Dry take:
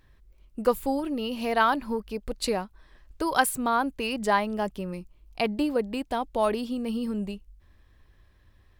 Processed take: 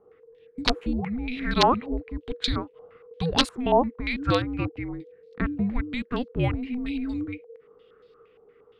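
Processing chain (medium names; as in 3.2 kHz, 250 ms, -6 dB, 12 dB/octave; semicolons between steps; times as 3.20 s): integer overflow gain 11 dB; frequency shift -500 Hz; step-sequenced low-pass 8.6 Hz 780–4200 Hz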